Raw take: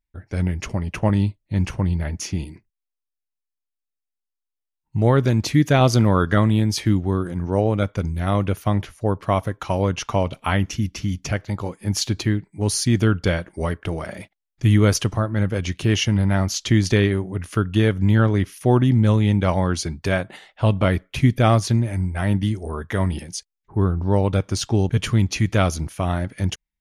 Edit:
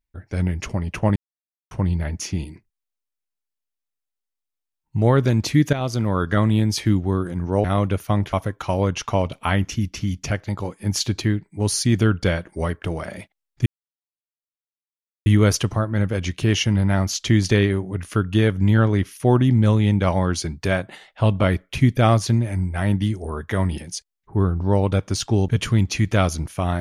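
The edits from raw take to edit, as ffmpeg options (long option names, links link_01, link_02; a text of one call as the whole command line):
ffmpeg -i in.wav -filter_complex "[0:a]asplit=7[link_01][link_02][link_03][link_04][link_05][link_06][link_07];[link_01]atrim=end=1.16,asetpts=PTS-STARTPTS,afade=type=out:start_time=1.156:duration=0.004:curve=hsin[link_08];[link_02]atrim=start=1.16:end=1.71,asetpts=PTS-STARTPTS,volume=0[link_09];[link_03]atrim=start=1.71:end=5.73,asetpts=PTS-STARTPTS,afade=type=in:duration=0.004:curve=hsin,afade=type=out:start_time=4.016:duration=0.004:curve=hsin:silence=0.251189[link_10];[link_04]atrim=start=5.73:end=7.642,asetpts=PTS-STARTPTS,afade=type=in:duration=0.83:silence=0.251189[link_11];[link_05]atrim=start=8.208:end=8.902[link_12];[link_06]atrim=start=9.338:end=14.67,asetpts=PTS-STARTPTS,afade=type=out:start_time=5.328:duration=0.004:curve=hsin,apad=pad_dur=1.6[link_13];[link_07]atrim=start=14.67,asetpts=PTS-STARTPTS,afade=type=in:duration=0.004:curve=hsin[link_14];[link_08][link_09][link_10][link_11]concat=n=4:v=0:a=1[link_15];[link_15][link_12]acrossfade=duration=0.004:curve1=hsin:curve2=hsin[link_16];[link_13][link_14]concat=n=2:v=0:a=1[link_17];[link_16][link_17]acrossfade=duration=0.004:curve1=hsin:curve2=hsin" out.wav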